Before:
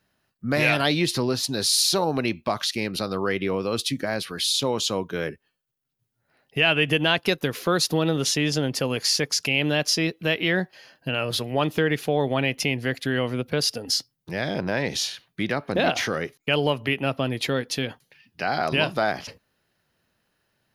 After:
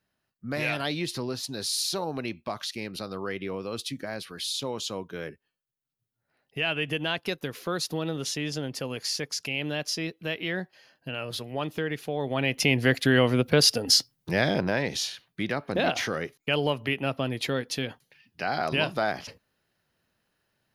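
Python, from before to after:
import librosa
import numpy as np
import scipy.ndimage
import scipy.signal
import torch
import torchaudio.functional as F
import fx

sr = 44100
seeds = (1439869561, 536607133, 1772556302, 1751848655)

y = fx.gain(x, sr, db=fx.line((12.16, -8.0), (12.79, 4.0), (14.39, 4.0), (14.91, -3.5)))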